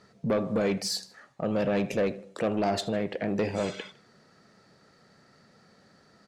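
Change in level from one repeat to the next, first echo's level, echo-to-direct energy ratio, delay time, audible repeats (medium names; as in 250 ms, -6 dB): -5.5 dB, -21.5 dB, -20.5 dB, 78 ms, 2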